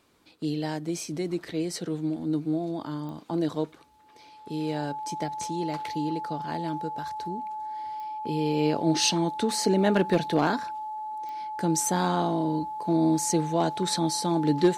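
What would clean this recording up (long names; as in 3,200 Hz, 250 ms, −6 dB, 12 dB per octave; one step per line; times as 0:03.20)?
clipped peaks rebuilt −12.5 dBFS
click removal
notch filter 860 Hz, Q 30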